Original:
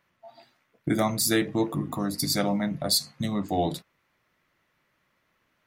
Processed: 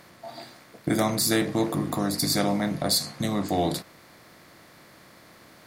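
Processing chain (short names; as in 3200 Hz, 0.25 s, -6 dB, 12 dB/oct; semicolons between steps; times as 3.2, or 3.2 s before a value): per-bin compression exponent 0.6; gain -1.5 dB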